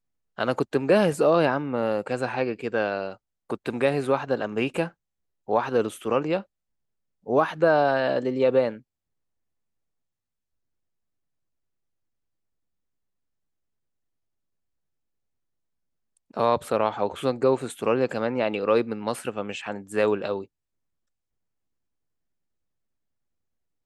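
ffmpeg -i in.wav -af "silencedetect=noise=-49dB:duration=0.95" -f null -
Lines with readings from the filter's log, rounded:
silence_start: 8.81
silence_end: 16.17 | silence_duration: 7.36
silence_start: 20.46
silence_end: 23.86 | silence_duration: 3.40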